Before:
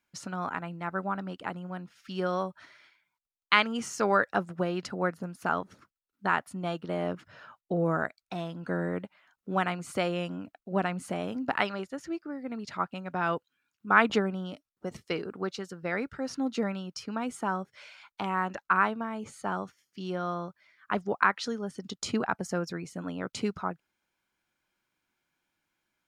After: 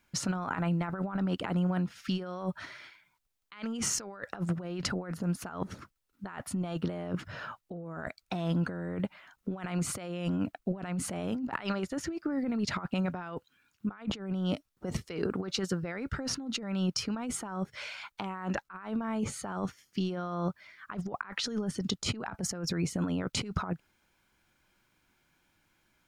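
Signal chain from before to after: negative-ratio compressor -39 dBFS, ratio -1; low shelf 130 Hz +11 dB; gain +2 dB

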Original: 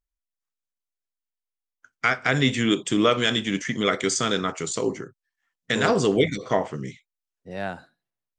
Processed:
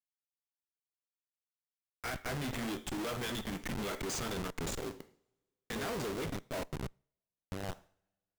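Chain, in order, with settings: level-crossing sampler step -23 dBFS; two-slope reverb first 0.47 s, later 1.7 s, from -28 dB, DRR 19 dB; tube stage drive 34 dB, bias 0.35; gain -1.5 dB

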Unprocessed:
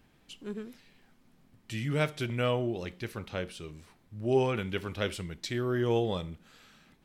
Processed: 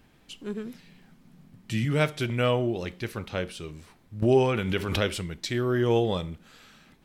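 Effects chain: 0.65–1.85 bell 170 Hz +11 dB 0.7 oct; 4.22–5.3 backwards sustainer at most 42 dB/s; gain +4.5 dB

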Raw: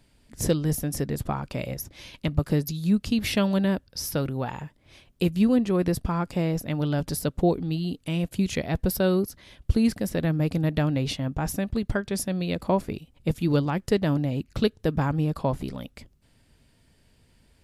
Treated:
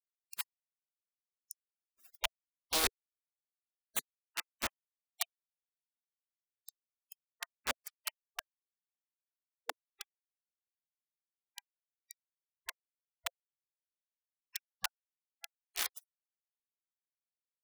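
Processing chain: flipped gate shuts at -21 dBFS, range -33 dB; bit-crush 6-bit; spectral gate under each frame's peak -20 dB weak; gain +11.5 dB

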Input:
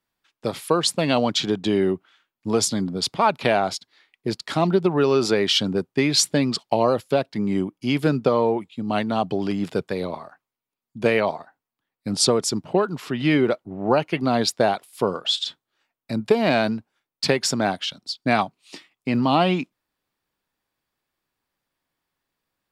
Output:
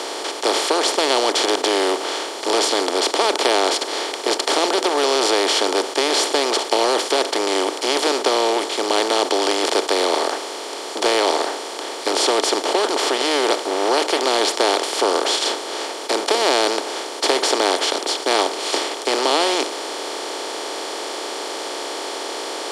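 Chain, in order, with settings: per-bin compression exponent 0.2; steep high-pass 310 Hz 36 dB/oct; gain -7 dB

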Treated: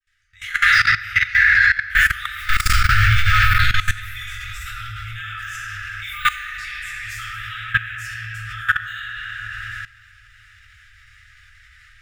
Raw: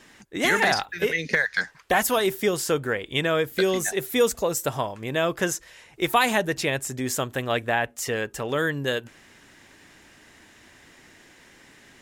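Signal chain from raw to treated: opening faded in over 0.75 s; high shelf 3800 Hz -7 dB; 2.37–3.54 sample leveller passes 5; de-hum 204.7 Hz, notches 3; de-esser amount 70%; thinning echo 0.345 s, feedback 83%, high-pass 640 Hz, level -23 dB; reverb RT60 2.7 s, pre-delay 3 ms, DRR -12 dB; FFT band-reject 110–1200 Hz; low shelf 110 Hz +8 dB; level quantiser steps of 18 dB; gain +5 dB

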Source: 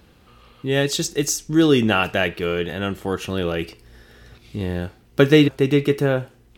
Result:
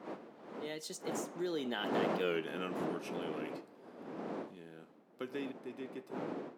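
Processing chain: wind noise 490 Hz -18 dBFS; Doppler pass-by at 2.3, 32 m/s, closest 2.5 m; HPF 200 Hz 24 dB/oct; compressor 3:1, threshold -41 dBFS, peak gain reduction 16.5 dB; gain +5 dB

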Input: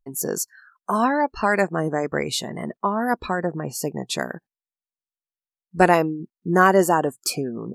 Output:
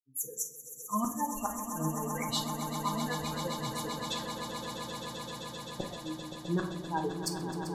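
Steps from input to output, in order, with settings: per-bin expansion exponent 3; vocal rider within 3 dB 2 s; flipped gate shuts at -13 dBFS, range -28 dB; swelling echo 0.13 s, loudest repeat 8, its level -10.5 dB; reverb RT60 0.60 s, pre-delay 6 ms, DRR 3 dB; gain -7 dB

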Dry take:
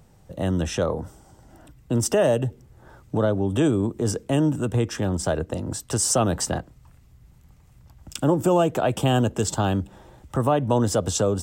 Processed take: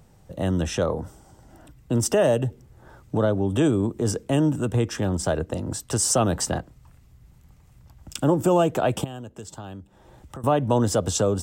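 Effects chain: 9.04–10.44 compressor 3:1, threshold -41 dBFS, peak gain reduction 17 dB

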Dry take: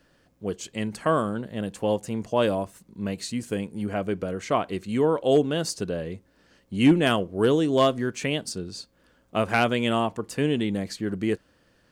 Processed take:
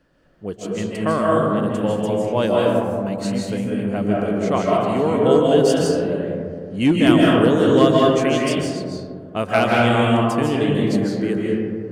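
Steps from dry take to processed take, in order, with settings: digital reverb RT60 2.2 s, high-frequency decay 0.3×, pre-delay 0.115 s, DRR -4 dB; mismatched tape noise reduction decoder only; gain +1 dB

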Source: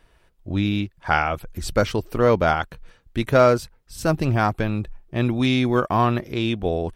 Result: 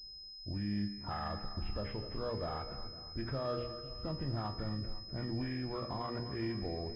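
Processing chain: nonlinear frequency compression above 1000 Hz 1.5:1; low-pass opened by the level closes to 450 Hz, open at -18.5 dBFS; low shelf 170 Hz +7 dB; notches 60/120/180/240/300/360/420/480 Hz; compressor 3:1, threshold -21 dBFS, peak gain reduction 8.5 dB; limiter -20 dBFS, peak gain reduction 9.5 dB; resonator 68 Hz, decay 0.8 s, harmonics all, mix 70%; split-band echo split 350 Hz, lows 0.516 s, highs 0.251 s, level -12.5 dB; pulse-width modulation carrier 5100 Hz; gain -2 dB

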